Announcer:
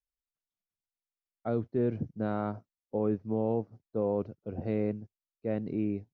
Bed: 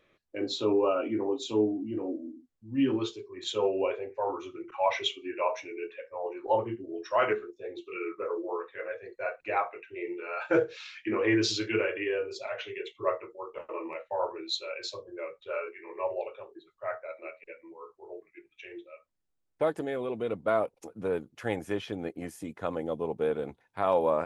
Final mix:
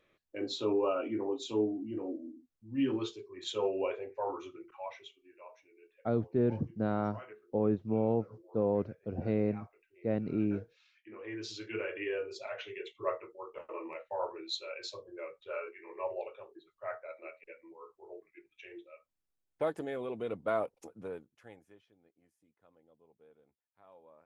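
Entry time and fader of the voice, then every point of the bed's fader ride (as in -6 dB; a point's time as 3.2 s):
4.60 s, 0.0 dB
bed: 4.47 s -4.5 dB
5.12 s -23.5 dB
10.93 s -23.5 dB
12.04 s -5 dB
20.86 s -5 dB
21.94 s -33.5 dB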